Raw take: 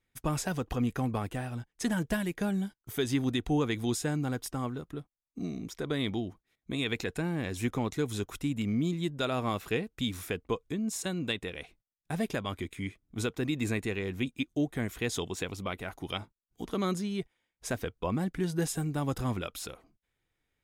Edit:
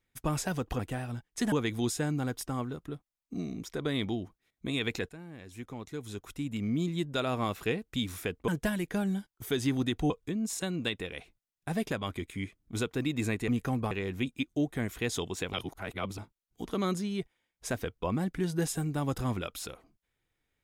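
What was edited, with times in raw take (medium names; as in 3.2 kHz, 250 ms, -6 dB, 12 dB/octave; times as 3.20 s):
0.79–1.22 s: move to 13.91 s
1.95–3.57 s: move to 10.53 s
7.14–8.93 s: fade in quadratic, from -14.5 dB
15.53–16.18 s: reverse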